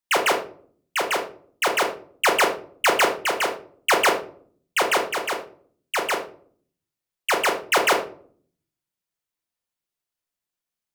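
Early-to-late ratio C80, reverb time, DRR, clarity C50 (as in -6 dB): 13.5 dB, not exponential, 2.5 dB, 9.0 dB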